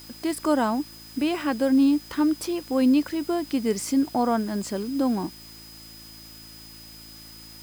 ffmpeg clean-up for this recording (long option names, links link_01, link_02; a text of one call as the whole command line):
ffmpeg -i in.wav -af "bandreject=frequency=55:width_type=h:width=4,bandreject=frequency=110:width_type=h:width=4,bandreject=frequency=165:width_type=h:width=4,bandreject=frequency=220:width_type=h:width=4,bandreject=frequency=275:width_type=h:width=4,bandreject=frequency=330:width_type=h:width=4,bandreject=frequency=5000:width=30,afwtdn=0.0035" out.wav